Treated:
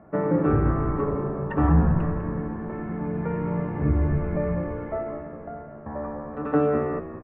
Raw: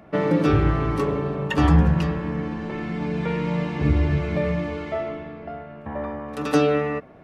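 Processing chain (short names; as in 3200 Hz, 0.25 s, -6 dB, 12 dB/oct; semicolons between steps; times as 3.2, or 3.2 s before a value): LPF 1600 Hz 24 dB/oct; frequency-shifting echo 0.198 s, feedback 40%, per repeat -62 Hz, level -11 dB; gain -2.5 dB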